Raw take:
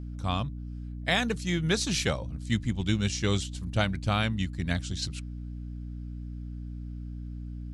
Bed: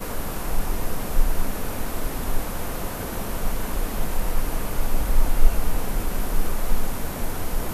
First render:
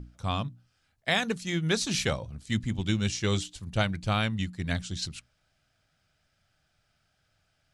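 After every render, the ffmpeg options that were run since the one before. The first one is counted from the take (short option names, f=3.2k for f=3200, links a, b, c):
-af "bandreject=f=60:t=h:w=6,bandreject=f=120:t=h:w=6,bandreject=f=180:t=h:w=6,bandreject=f=240:t=h:w=6,bandreject=f=300:t=h:w=6"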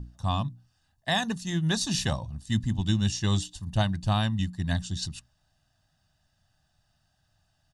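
-af "equalizer=f=2.2k:t=o:w=0.44:g=-12,aecho=1:1:1.1:0.66"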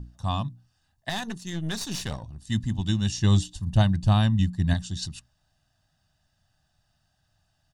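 -filter_complex "[0:a]asettb=1/sr,asplit=3[a][b][c];[a]atrim=end=1.094[d];[b]atrim=start=1.09:end=2.42,asetpts=PTS-STARTPTS,afade=t=in:d=0.004:c=qsin,afade=t=out:st=1.326:d=0.004:c=qsin,aeval=exprs='(tanh(20*val(0)+0.65)-tanh(0.65))/20':c=same[e];[c]atrim=start=2.416[f];[d][e]acrossfade=d=0.004:c1=hsin:c2=qsin[g];[g][f]acrossfade=d=0.004:c1=qsin:c2=hsin,asettb=1/sr,asplit=3[h][i][j];[h]atrim=end=3.184[k];[i]atrim=start=3.18:end=4.74,asetpts=PTS-STARTPTS,afade=t=in:d=0.004:c=qsin,afade=t=out:st=1.556:d=0.004:c=qsin,lowshelf=f=330:g=7[l];[j]atrim=start=4.736[m];[k][l]acrossfade=d=0.004:c1=hsin:c2=qsin[n];[n][m]acrossfade=d=0.004:c1=qsin:c2=hsin"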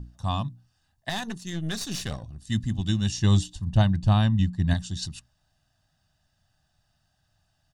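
-filter_complex "[0:a]asettb=1/sr,asplit=3[a][b][c];[a]atrim=end=1.444[d];[b]atrim=start=1.44:end=3.03,asetpts=PTS-STARTPTS,afade=t=in:d=0.004:c=qsin,afade=t=out:st=1.586:d=0.004:c=qsin,bandreject=f=920:w=5.5[e];[c]atrim=start=3.026[f];[d][e]acrossfade=d=0.004:c1=hsin:c2=qsin[g];[g][f]acrossfade=d=0.004:c1=qsin:c2=hsin,asettb=1/sr,asplit=3[h][i][j];[h]atrim=end=3.554[k];[i]atrim=start=3.55:end=4.71,asetpts=PTS-STARTPTS,afade=t=in:d=0.004:c=qsin,afade=t=out:st=1.156:d=0.004:c=qsin,highshelf=f=7.7k:g=-10[l];[j]atrim=start=4.706[m];[k][l]acrossfade=d=0.004:c1=hsin:c2=qsin[n];[n][m]acrossfade=d=0.004:c1=qsin:c2=hsin"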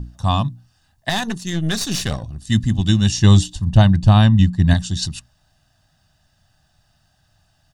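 -af "volume=9.5dB,alimiter=limit=-1dB:level=0:latency=1"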